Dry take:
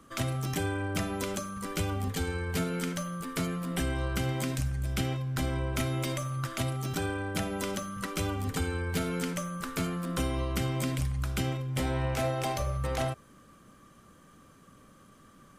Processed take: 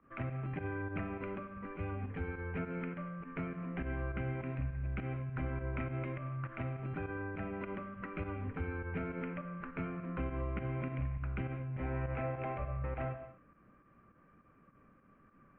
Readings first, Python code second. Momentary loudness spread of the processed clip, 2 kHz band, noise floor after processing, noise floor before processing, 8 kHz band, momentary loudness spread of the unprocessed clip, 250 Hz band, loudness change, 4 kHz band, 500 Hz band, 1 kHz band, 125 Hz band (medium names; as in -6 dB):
4 LU, -7.5 dB, -65 dBFS, -57 dBFS, under -40 dB, 3 LU, -7.5 dB, -7.5 dB, under -25 dB, -7.5 dB, -8.0 dB, -6.5 dB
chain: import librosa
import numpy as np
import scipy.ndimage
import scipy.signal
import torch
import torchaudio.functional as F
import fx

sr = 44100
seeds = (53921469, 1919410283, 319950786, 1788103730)

y = fx.volume_shaper(x, sr, bpm=102, per_beat=2, depth_db=-13, release_ms=78.0, shape='fast start')
y = scipy.signal.sosfilt(scipy.signal.cheby1(5, 1.0, 2500.0, 'lowpass', fs=sr, output='sos'), y)
y = fx.rev_gated(y, sr, seeds[0], gate_ms=260, shape='flat', drr_db=9.5)
y = y * 10.0 ** (-7.0 / 20.0)